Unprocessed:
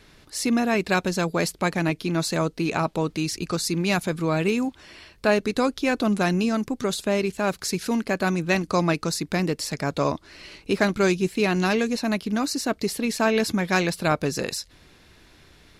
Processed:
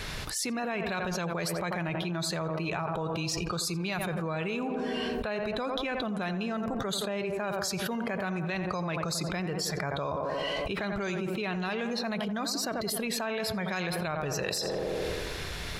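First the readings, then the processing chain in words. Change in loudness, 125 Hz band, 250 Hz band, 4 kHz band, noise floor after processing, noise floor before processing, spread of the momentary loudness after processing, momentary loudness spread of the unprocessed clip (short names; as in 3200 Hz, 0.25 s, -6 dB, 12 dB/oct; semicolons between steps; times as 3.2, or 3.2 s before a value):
-7.5 dB, -6.5 dB, -9.5 dB, -3.5 dB, -36 dBFS, -55 dBFS, 2 LU, 5 LU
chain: spectral noise reduction 15 dB; bell 290 Hz -9 dB 0.92 oct; tape echo 87 ms, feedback 73%, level -10.5 dB, low-pass 1400 Hz; limiter -17 dBFS, peak gain reduction 8 dB; fast leveller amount 100%; gain -8.5 dB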